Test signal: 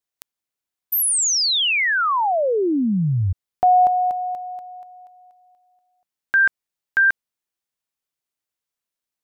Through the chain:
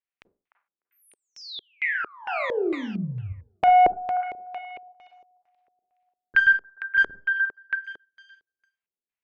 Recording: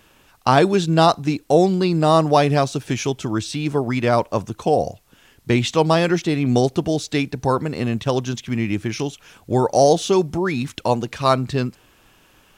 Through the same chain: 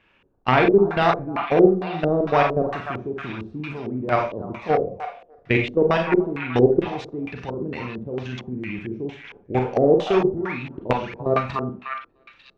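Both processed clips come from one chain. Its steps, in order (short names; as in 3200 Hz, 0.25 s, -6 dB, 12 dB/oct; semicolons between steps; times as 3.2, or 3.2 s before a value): level quantiser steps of 16 dB; one-sided clip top -15.5 dBFS; on a send: delay with a stepping band-pass 0.299 s, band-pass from 1100 Hz, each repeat 0.7 oct, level -4 dB; on the sum: Schroeder reverb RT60 0.35 s, combs from 32 ms, DRR 2.5 dB; LFO low-pass square 2.2 Hz 410–2400 Hz; gain -1 dB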